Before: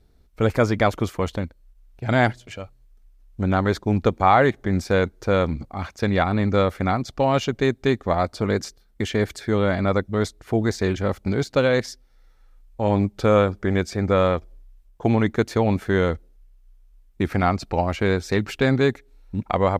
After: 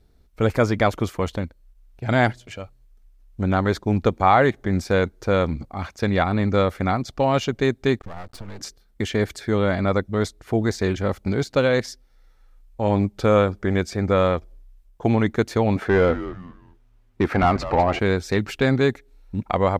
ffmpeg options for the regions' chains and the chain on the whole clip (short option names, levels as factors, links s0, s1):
-filter_complex "[0:a]asettb=1/sr,asplit=3[s0][s1][s2];[s0]atrim=end=7.994[s3];[s1]atrim=start=7.99:end=8.61,asetpts=PTS-STARTPTS,afade=t=in:d=0.004:c=qsin,afade=t=out:st=0.616:d=0.004:c=qsin,lowshelf=f=160:g=7.5,acompressor=threshold=0.0501:ratio=8:attack=3.2:release=140:knee=1:detection=peak,aeval=exprs='max(val(0),0)':c=same[s4];[s2]atrim=start=8.606[s5];[s3][s4]acrossfade=d=0.004:c1=hsin:c2=qsin[s6];[s6][s5]acrossfade=d=0.004:c1=qsin:c2=hsin,asettb=1/sr,asplit=3[s7][s8][s9];[s7]atrim=end=15.764[s10];[s8]atrim=start=15.76:end=17.99,asetpts=PTS-STARTPTS,afade=t=in:d=0.004:c=qsin,afade=t=out:st=2.226:d=0.004:c=qsin,asplit=2[s11][s12];[s12]highpass=f=720:p=1,volume=8.91,asoftclip=type=tanh:threshold=0.447[s13];[s11][s13]amix=inputs=2:normalize=0,lowpass=f=1100:p=1,volume=0.501,asplit=4[s14][s15][s16][s17];[s15]adelay=201,afreqshift=-140,volume=0.224[s18];[s16]adelay=402,afreqshift=-280,volume=0.0716[s19];[s17]adelay=603,afreqshift=-420,volume=0.0229[s20];[s14][s18][s19][s20]amix=inputs=4:normalize=0,atrim=end_sample=98343[s21];[s9]atrim=start=17.986[s22];[s10][s21]acrossfade=d=0.004:c1=hsin:c2=qsin[s23];[s23][s22]acrossfade=d=0.004:c1=qsin:c2=hsin"